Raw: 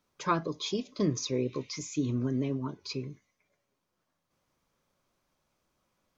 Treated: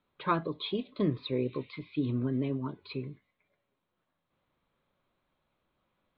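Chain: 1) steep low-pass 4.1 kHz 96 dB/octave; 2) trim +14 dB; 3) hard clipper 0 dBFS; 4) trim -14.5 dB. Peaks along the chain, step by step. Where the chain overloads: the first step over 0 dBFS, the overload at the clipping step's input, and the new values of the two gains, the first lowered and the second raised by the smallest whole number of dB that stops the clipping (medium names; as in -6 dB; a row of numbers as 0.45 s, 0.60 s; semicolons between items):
-15.5 dBFS, -1.5 dBFS, -1.5 dBFS, -16.0 dBFS; nothing clips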